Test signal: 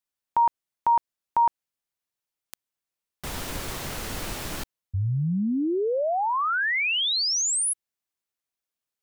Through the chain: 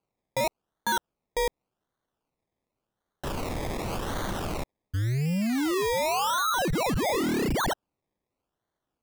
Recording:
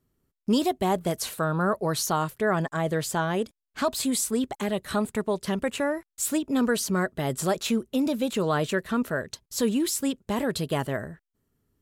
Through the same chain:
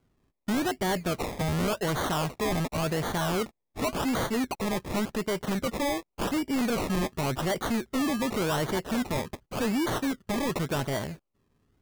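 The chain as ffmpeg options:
ffmpeg -i in.wav -af "acrusher=samples=24:mix=1:aa=0.000001:lfo=1:lforange=14.4:lforate=0.89,asoftclip=type=tanh:threshold=-27.5dB,volume=3.5dB" out.wav

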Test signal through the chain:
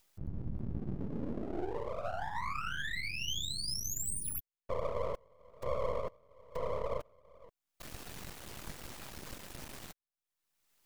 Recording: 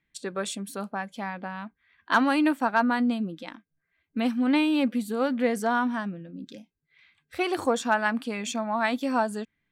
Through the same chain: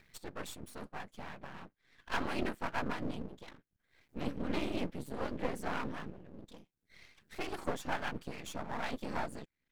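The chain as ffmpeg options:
ffmpeg -i in.wav -af "acompressor=mode=upward:threshold=-34dB:ratio=2.5,afftfilt=real='hypot(re,im)*cos(2*PI*random(0))':imag='hypot(re,im)*sin(2*PI*random(1))':win_size=512:overlap=0.75,aeval=exprs='max(val(0),0)':channel_layout=same,volume=-2.5dB" out.wav

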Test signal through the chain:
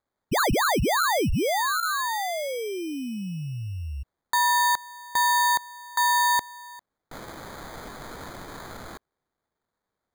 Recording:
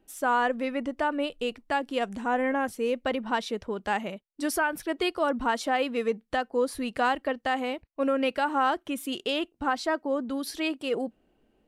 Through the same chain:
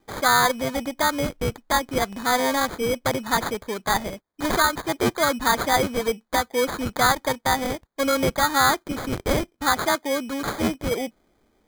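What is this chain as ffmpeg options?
ffmpeg -i in.wav -af "tiltshelf=frequency=970:gain=-5,acrusher=samples=16:mix=1:aa=0.000001,volume=6dB" out.wav

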